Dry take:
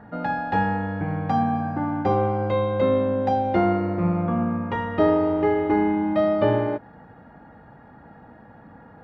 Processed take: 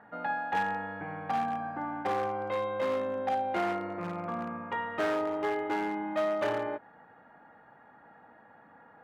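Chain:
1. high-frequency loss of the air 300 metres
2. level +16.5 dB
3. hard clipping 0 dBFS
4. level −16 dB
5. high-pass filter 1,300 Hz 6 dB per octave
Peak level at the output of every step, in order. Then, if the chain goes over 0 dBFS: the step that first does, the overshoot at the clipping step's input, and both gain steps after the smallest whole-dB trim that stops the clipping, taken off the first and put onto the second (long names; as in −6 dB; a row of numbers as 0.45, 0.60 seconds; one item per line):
−7.5, +9.0, 0.0, −16.0, −16.5 dBFS
step 2, 9.0 dB
step 2 +7.5 dB, step 4 −7 dB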